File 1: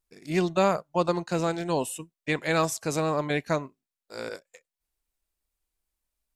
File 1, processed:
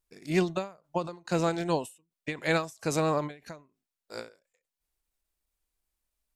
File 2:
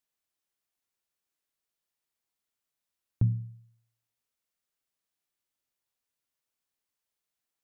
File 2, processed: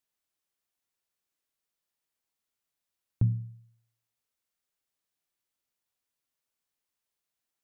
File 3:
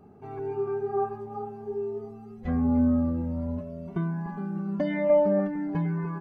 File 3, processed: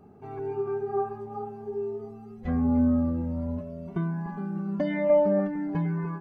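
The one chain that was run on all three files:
every ending faded ahead of time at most 170 dB per second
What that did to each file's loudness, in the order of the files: −3.0, 0.0, 0.0 LU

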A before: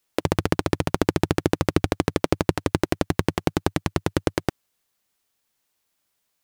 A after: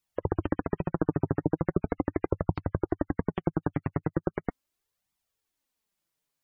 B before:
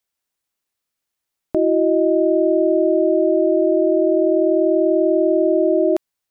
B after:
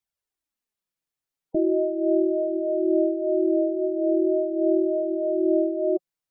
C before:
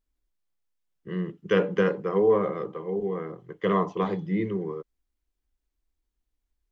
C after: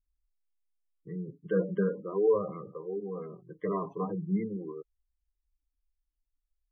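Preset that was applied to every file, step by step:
gate on every frequency bin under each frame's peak −20 dB strong
low-shelf EQ 390 Hz +5 dB
flanger 0.39 Hz, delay 0.8 ms, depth 6.9 ms, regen +14%
level −5.5 dB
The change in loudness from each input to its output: −6.5, −6.5, −5.5 LU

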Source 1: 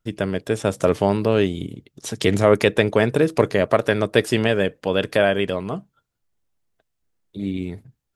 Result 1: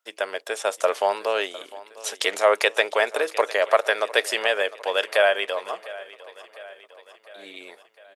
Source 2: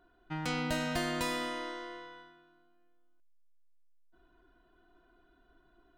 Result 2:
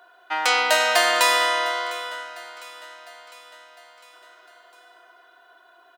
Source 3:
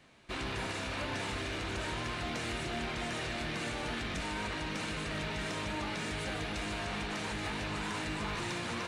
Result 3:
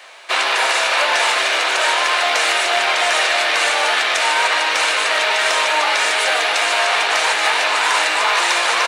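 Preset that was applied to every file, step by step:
high-pass filter 580 Hz 24 dB per octave
floating-point word with a short mantissa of 8 bits
repeating echo 704 ms, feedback 57%, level −18.5 dB
normalise the peak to −3 dBFS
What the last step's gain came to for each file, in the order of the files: +2.0, +17.5, +22.5 decibels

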